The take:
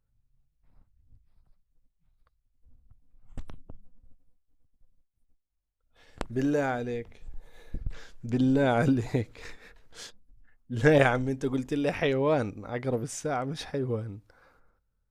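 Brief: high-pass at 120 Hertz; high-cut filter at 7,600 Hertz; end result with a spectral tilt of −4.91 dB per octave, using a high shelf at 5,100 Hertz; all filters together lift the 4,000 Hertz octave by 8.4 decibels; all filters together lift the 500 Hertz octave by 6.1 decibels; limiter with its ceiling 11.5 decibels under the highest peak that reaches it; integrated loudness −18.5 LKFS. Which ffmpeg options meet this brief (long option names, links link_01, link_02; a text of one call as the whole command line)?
ffmpeg -i in.wav -af "highpass=120,lowpass=7600,equalizer=frequency=500:width_type=o:gain=7,equalizer=frequency=4000:width_type=o:gain=8.5,highshelf=frequency=5100:gain=5,volume=8dB,alimiter=limit=-5.5dB:level=0:latency=1" out.wav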